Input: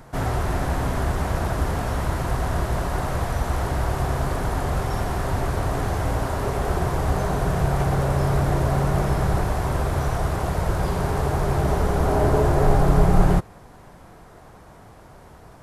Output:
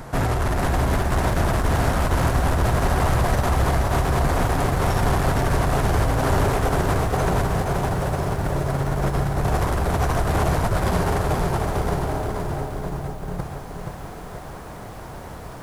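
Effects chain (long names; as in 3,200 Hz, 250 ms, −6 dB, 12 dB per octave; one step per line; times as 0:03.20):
compressor whose output falls as the input rises −24 dBFS, ratio −0.5
soft clipping −22 dBFS, distortion −12 dB
feedback echo at a low word length 475 ms, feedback 55%, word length 9 bits, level −5 dB
level +5.5 dB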